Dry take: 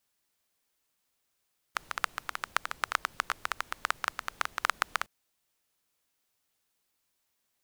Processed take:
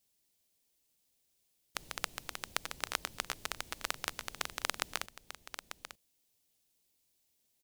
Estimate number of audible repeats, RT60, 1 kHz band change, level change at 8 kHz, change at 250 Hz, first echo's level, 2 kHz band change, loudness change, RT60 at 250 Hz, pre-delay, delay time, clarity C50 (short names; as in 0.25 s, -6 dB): 1, none, -9.5 dB, +2.0 dB, +2.0 dB, -10.5 dB, -7.0 dB, -5.5 dB, none, none, 0.893 s, none